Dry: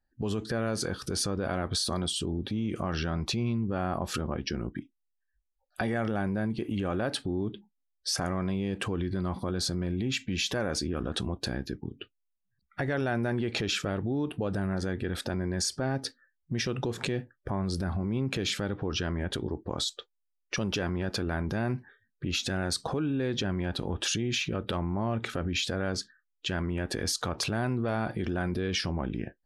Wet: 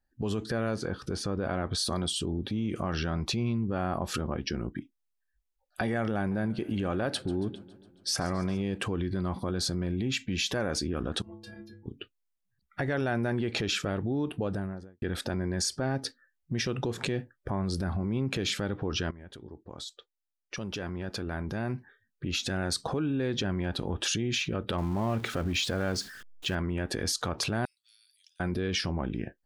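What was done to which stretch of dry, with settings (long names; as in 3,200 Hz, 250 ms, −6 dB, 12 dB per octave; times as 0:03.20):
0:00.74–0:01.77: low-pass filter 1,700 Hz → 3,800 Hz 6 dB per octave
0:06.17–0:08.62: feedback echo with a swinging delay time 138 ms, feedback 63%, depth 105 cents, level −20 dB
0:11.22–0:11.86: stiff-string resonator 100 Hz, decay 0.73 s, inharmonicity 0.03
0:14.39–0:15.02: fade out and dull
0:19.11–0:22.76: fade in, from −17 dB
0:24.78–0:26.55: converter with a step at zero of −41.5 dBFS
0:27.65–0:28.40: inverse Chebyshev high-pass filter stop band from 820 Hz, stop band 80 dB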